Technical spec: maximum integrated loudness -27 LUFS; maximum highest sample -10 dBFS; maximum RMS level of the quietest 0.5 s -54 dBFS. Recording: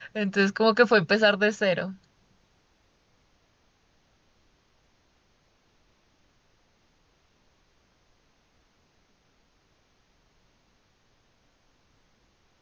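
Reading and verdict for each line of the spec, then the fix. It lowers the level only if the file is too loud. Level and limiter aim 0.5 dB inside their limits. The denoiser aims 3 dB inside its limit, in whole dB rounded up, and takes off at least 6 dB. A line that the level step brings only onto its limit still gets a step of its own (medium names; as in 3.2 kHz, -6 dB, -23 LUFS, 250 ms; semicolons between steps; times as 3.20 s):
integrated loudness -23.0 LUFS: fail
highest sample -7.5 dBFS: fail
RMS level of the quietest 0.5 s -66 dBFS: pass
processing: trim -4.5 dB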